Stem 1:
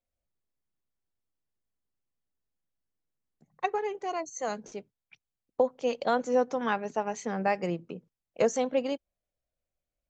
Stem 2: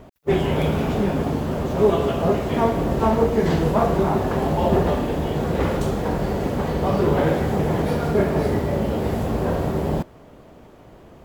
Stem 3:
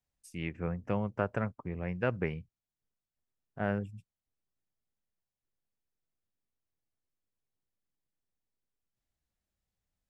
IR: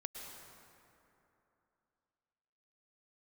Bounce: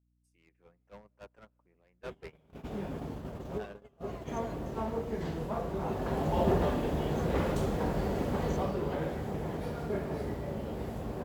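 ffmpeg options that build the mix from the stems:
-filter_complex "[0:a]lowshelf=f=170:g=11,aecho=1:1:1.9:0.92,volume=-19.5dB[a];[1:a]aeval=exprs='val(0)+0.02*(sin(2*PI*50*n/s)+sin(2*PI*2*50*n/s)/2+sin(2*PI*3*50*n/s)/3+sin(2*PI*4*50*n/s)/4+sin(2*PI*5*50*n/s)/5)':c=same,adelay=1750,volume=-9dB,afade=t=in:st=5.75:d=0.66:silence=0.398107,afade=t=out:st=8.52:d=0.22:silence=0.473151,asplit=2[b][c];[c]volume=-17.5dB[d];[2:a]highpass=340,asoftclip=type=hard:threshold=-33.5dB,volume=-2dB,asplit=3[e][f][g];[f]volume=-19.5dB[h];[g]apad=whole_len=573020[i];[b][i]sidechaincompress=threshold=-50dB:ratio=16:attack=6.8:release=453[j];[a][e]amix=inputs=2:normalize=0,alimiter=level_in=13.5dB:limit=-24dB:level=0:latency=1:release=59,volume=-13.5dB,volume=0dB[k];[3:a]atrim=start_sample=2205[l];[d][h]amix=inputs=2:normalize=0[m];[m][l]afir=irnorm=-1:irlink=0[n];[j][k][n]amix=inputs=3:normalize=0,aeval=exprs='val(0)+0.00316*(sin(2*PI*60*n/s)+sin(2*PI*2*60*n/s)/2+sin(2*PI*3*60*n/s)/3+sin(2*PI*4*60*n/s)/4+sin(2*PI*5*60*n/s)/5)':c=same,agate=range=-23dB:threshold=-39dB:ratio=16:detection=peak"

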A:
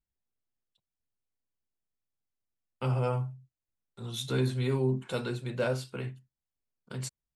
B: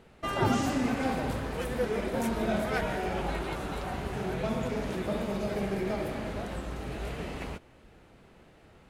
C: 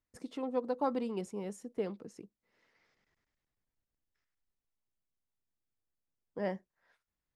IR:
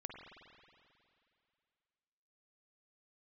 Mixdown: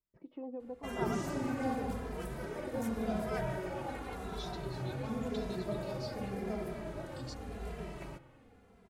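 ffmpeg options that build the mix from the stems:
-filter_complex "[0:a]lowpass=f=4.9k:t=q:w=4.9,adelay=250,volume=-6.5dB[a];[1:a]equalizer=f=3.1k:w=0.85:g=-5.5,adelay=600,volume=-6dB,asplit=2[b][c];[c]volume=-4dB[d];[2:a]lowpass=f=2.3k:w=0.5412,lowpass=f=2.3k:w=1.3066,volume=-1dB[e];[a][e]amix=inputs=2:normalize=0,equalizer=f=1.6k:t=o:w=1.1:g=-10,alimiter=level_in=10dB:limit=-24dB:level=0:latency=1:release=140,volume=-10dB,volume=0dB[f];[3:a]atrim=start_sample=2205[g];[d][g]afir=irnorm=-1:irlink=0[h];[b][f][h]amix=inputs=3:normalize=0,asplit=2[i][j];[j]adelay=2.6,afreqshift=-0.89[k];[i][k]amix=inputs=2:normalize=1"

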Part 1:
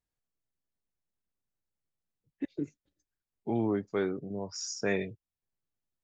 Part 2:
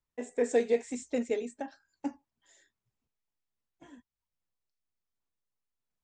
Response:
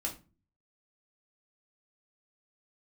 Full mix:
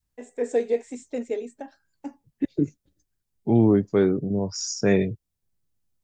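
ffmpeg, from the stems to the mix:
-filter_complex "[0:a]bass=f=250:g=12,treble=f=4k:g=6,volume=2.5dB,asplit=2[a][b];[1:a]volume=-2.5dB[c];[b]apad=whole_len=265984[d];[c][d]sidechaincompress=threshold=-45dB:ratio=8:attack=16:release=551[e];[a][e]amix=inputs=2:normalize=0,adynamicequalizer=threshold=0.0158:dfrequency=430:dqfactor=0.72:tfrequency=430:tqfactor=0.72:attack=5:release=100:ratio=0.375:range=3:mode=boostabove:tftype=bell"

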